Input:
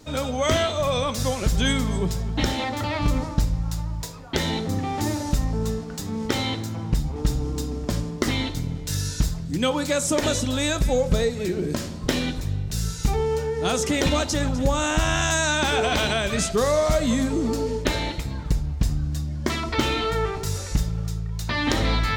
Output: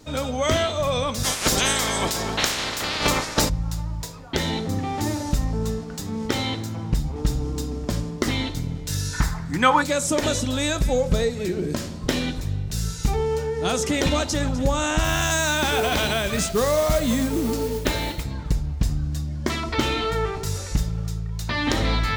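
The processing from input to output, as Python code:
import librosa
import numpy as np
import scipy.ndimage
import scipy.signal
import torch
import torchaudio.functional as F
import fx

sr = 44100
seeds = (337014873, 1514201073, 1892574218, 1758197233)

y = fx.spec_clip(x, sr, under_db=27, at=(1.23, 3.48), fade=0.02)
y = fx.band_shelf(y, sr, hz=1300.0, db=13.5, octaves=1.7, at=(9.13, 9.82))
y = fx.mod_noise(y, sr, seeds[0], snr_db=16, at=(15.03, 18.23), fade=0.02)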